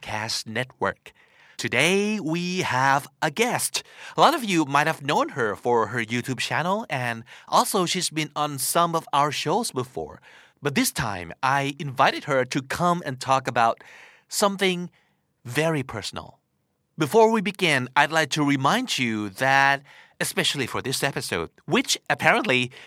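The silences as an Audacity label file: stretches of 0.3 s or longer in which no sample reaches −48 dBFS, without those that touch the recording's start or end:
14.970000	15.450000	silence
16.340000	16.980000	silence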